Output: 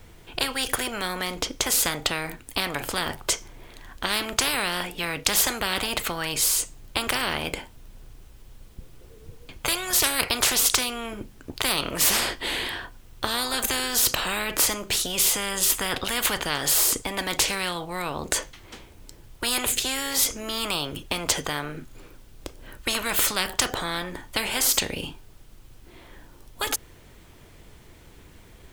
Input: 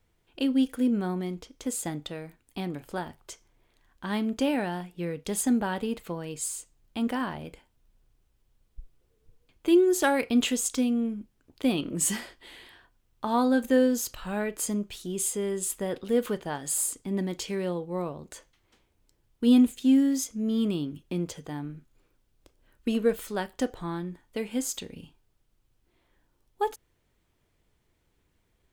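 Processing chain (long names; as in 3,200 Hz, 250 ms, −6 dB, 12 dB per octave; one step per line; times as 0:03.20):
every bin compressed towards the loudest bin 10 to 1
level +8.5 dB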